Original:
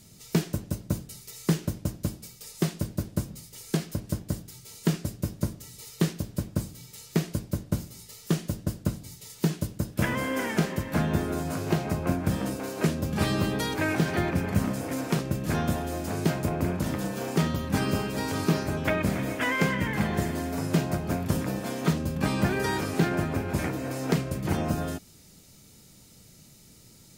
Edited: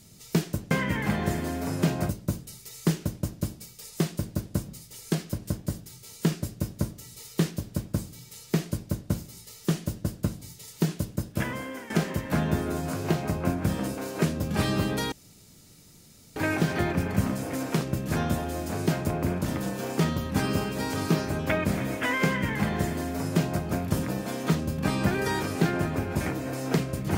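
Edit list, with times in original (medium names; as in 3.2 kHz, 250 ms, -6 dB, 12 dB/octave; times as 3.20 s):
9.78–10.52 s: fade out, to -14.5 dB
13.74 s: insert room tone 1.24 s
19.62–21.00 s: copy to 0.71 s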